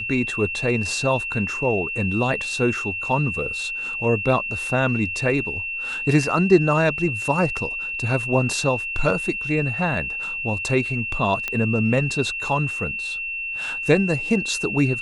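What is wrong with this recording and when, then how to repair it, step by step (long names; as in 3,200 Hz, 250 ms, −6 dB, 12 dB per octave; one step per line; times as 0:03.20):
whistle 2,700 Hz −26 dBFS
0:11.48: click −11 dBFS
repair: click removal
notch filter 2,700 Hz, Q 30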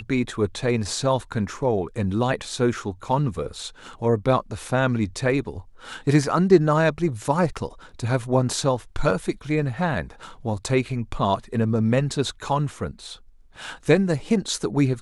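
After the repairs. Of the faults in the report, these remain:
none of them is left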